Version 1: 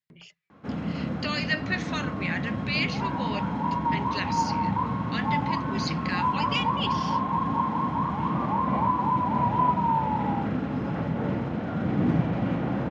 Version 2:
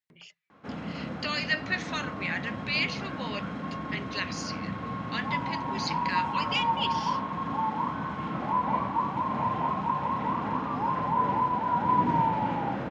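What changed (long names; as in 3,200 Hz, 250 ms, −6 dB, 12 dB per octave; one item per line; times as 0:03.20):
second sound: entry +2.30 s
master: add low-shelf EQ 370 Hz −8.5 dB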